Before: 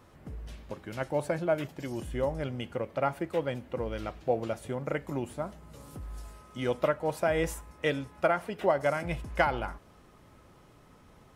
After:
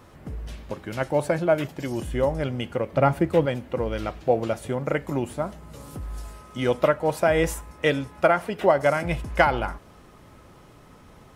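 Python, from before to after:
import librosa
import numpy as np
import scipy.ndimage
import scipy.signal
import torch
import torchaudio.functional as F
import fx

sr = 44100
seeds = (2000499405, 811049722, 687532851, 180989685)

y = fx.low_shelf(x, sr, hz=280.0, db=10.5, at=(2.92, 3.46))
y = y * 10.0 ** (7.0 / 20.0)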